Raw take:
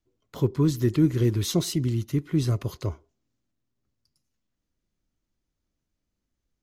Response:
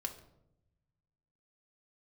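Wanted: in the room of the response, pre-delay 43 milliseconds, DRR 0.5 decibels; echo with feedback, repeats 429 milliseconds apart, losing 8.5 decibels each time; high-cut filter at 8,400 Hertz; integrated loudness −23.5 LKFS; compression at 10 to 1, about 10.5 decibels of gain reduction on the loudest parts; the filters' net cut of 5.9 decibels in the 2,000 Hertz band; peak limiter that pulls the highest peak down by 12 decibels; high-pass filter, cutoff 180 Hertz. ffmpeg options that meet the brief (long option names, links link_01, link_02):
-filter_complex "[0:a]highpass=180,lowpass=8400,equalizer=frequency=2000:width_type=o:gain=-7.5,acompressor=threshold=-28dB:ratio=10,alimiter=level_in=7dB:limit=-24dB:level=0:latency=1,volume=-7dB,aecho=1:1:429|858|1287|1716:0.376|0.143|0.0543|0.0206,asplit=2[link_01][link_02];[1:a]atrim=start_sample=2205,adelay=43[link_03];[link_02][link_03]afir=irnorm=-1:irlink=0,volume=0dB[link_04];[link_01][link_04]amix=inputs=2:normalize=0,volume=14.5dB"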